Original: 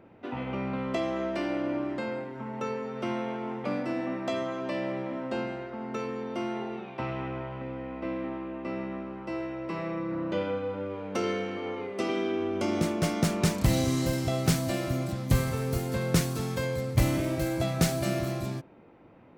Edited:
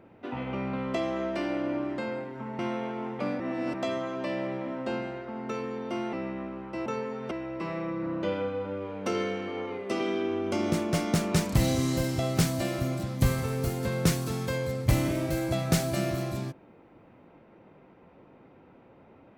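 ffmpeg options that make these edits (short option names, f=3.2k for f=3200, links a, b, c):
-filter_complex "[0:a]asplit=7[a][b][c][d][e][f][g];[a]atrim=end=2.592[h];[b]atrim=start=3.038:end=3.852[i];[c]atrim=start=3.848:end=4.192,asetpts=PTS-STARTPTS,areverse[j];[d]atrim=start=4.188:end=6.582[k];[e]atrim=start=8.668:end=9.402[l];[f]atrim=start=2.588:end=3.042[m];[g]atrim=start=9.398[n];[h][i]acrossfade=d=0.004:c1=hsin:c2=hsin[o];[o][j]acrossfade=d=0.004:c1=hsin:c2=hsin[p];[p][k]acrossfade=d=0.004:c1=hsin:c2=hsin[q];[q][l]acrossfade=d=0.004:c1=hsin:c2=hsin[r];[r][m]acrossfade=d=0.004:c1=hsin:c2=hsin[s];[s][n]acrossfade=d=0.004:c1=hsin:c2=hsin"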